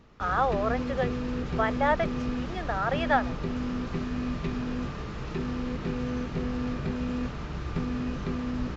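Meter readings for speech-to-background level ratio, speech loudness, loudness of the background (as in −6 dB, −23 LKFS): 3.5 dB, −29.0 LKFS, −32.5 LKFS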